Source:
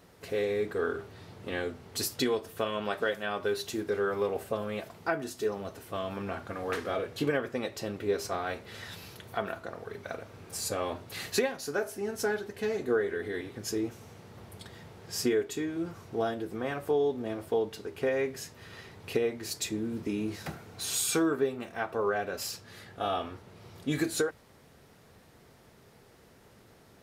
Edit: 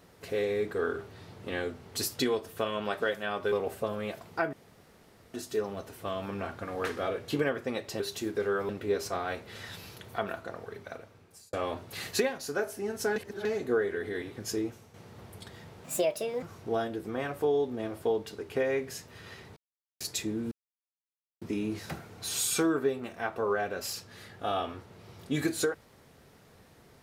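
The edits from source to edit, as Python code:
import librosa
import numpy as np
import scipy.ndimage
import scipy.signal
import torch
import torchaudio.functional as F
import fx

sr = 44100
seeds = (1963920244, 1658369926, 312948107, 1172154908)

y = fx.edit(x, sr, fx.move(start_s=3.52, length_s=0.69, to_s=7.88),
    fx.insert_room_tone(at_s=5.22, length_s=0.81),
    fx.fade_out_span(start_s=9.75, length_s=0.97),
    fx.reverse_span(start_s=12.35, length_s=0.29),
    fx.fade_out_to(start_s=13.78, length_s=0.35, floor_db=-9.5),
    fx.speed_span(start_s=15.03, length_s=0.86, speed=1.47),
    fx.silence(start_s=19.03, length_s=0.44),
    fx.insert_silence(at_s=19.98, length_s=0.9), tone=tone)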